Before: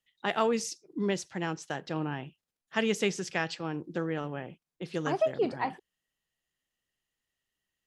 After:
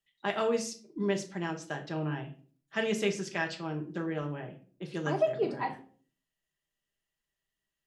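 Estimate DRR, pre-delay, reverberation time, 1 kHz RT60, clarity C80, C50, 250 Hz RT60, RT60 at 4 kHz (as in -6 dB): 2.0 dB, 3 ms, 0.45 s, 0.40 s, 17.0 dB, 12.5 dB, 0.60 s, 0.30 s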